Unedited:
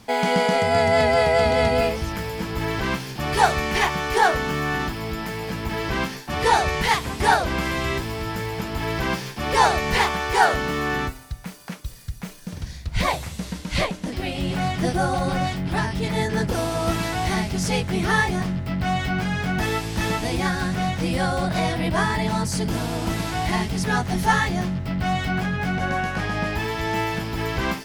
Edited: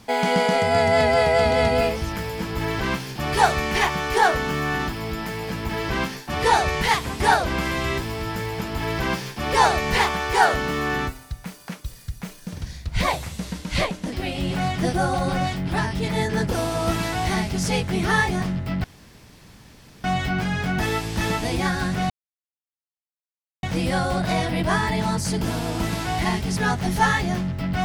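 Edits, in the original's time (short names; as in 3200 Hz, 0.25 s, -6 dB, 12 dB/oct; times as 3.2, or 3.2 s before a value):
18.84 insert room tone 1.20 s
20.9 insert silence 1.53 s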